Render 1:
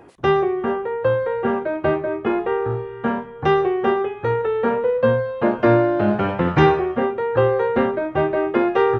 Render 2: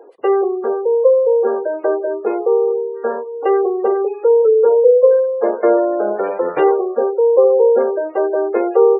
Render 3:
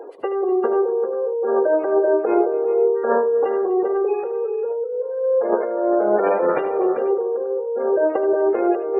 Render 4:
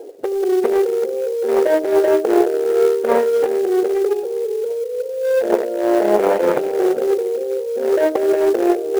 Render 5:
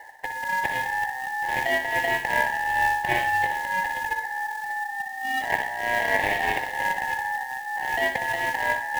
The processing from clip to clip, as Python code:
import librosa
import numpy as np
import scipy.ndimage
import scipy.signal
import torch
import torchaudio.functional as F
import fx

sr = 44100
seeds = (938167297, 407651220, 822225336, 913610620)

y1 = fx.diode_clip(x, sr, knee_db=-10.5)
y1 = fx.highpass_res(y1, sr, hz=460.0, q=4.9)
y1 = fx.spec_gate(y1, sr, threshold_db=-25, keep='strong')
y1 = y1 * 10.0 ** (-2.0 / 20.0)
y2 = fx.over_compress(y1, sr, threshold_db=-21.0, ratio=-1.0)
y2 = fx.echo_multitap(y2, sr, ms=(77, 246, 396, 492), db=(-12.0, -18.5, -12.5, -18.5))
y3 = fx.wiener(y2, sr, points=41)
y3 = fx.quant_companded(y3, sr, bits=6)
y3 = y3 * 10.0 ** (4.5 / 20.0)
y4 = fx.highpass(y3, sr, hz=890.0, slope=6)
y4 = y4 * np.sin(2.0 * np.pi * 1300.0 * np.arange(len(y4)) / sr)
y4 = fx.room_flutter(y4, sr, wall_m=10.5, rt60_s=0.44)